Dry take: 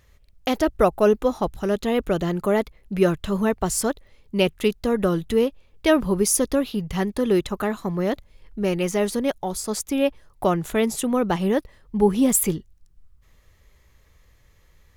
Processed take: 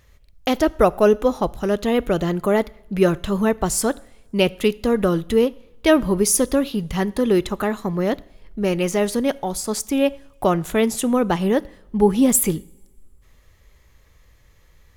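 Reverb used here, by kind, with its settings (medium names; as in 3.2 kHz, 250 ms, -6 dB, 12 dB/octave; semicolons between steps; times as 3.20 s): two-slope reverb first 0.57 s, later 2 s, from -20 dB, DRR 19 dB; trim +2.5 dB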